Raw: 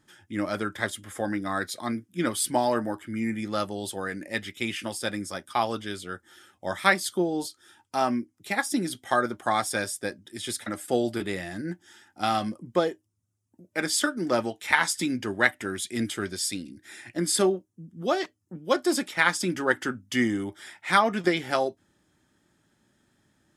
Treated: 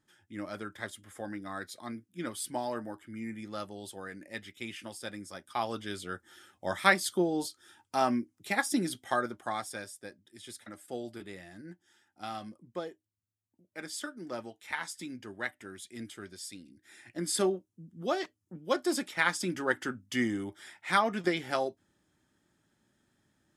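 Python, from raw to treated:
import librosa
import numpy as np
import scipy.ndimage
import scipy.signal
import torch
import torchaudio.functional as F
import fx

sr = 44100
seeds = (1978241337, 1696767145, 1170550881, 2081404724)

y = fx.gain(x, sr, db=fx.line((5.27, -10.5), (6.05, -2.5), (8.83, -2.5), (9.93, -14.0), (16.57, -14.0), (17.43, -5.5)))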